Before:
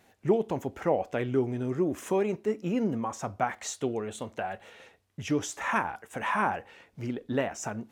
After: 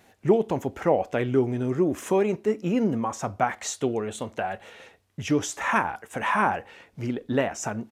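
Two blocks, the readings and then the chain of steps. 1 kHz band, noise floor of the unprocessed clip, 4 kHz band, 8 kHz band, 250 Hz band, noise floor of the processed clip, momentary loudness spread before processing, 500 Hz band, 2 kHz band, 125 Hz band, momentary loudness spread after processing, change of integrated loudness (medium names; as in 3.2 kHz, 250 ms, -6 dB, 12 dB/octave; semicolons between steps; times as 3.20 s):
+4.5 dB, -64 dBFS, +4.5 dB, +4.5 dB, +4.5 dB, -60 dBFS, 9 LU, +4.5 dB, +4.5 dB, +4.5 dB, 9 LU, +4.5 dB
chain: resampled via 32 kHz; trim +4.5 dB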